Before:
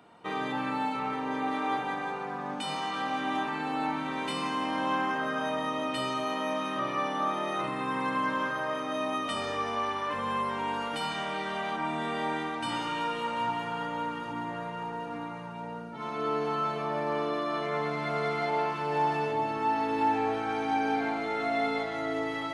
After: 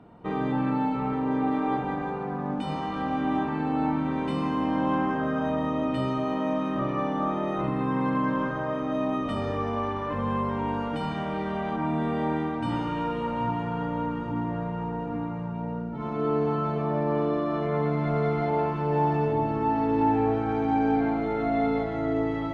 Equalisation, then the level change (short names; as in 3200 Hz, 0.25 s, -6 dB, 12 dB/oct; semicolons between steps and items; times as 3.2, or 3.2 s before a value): tilt -4.5 dB/oct; 0.0 dB